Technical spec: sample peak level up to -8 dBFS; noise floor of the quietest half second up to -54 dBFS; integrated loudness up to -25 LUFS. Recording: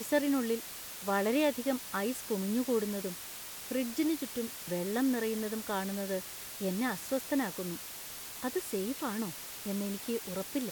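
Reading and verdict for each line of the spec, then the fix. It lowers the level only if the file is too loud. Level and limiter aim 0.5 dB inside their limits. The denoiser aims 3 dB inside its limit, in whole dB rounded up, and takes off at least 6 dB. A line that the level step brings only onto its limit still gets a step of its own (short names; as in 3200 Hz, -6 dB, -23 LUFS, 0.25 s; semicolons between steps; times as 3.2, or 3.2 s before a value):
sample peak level -16.0 dBFS: OK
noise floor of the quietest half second -44 dBFS: fail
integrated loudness -34.0 LUFS: OK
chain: denoiser 13 dB, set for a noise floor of -44 dBFS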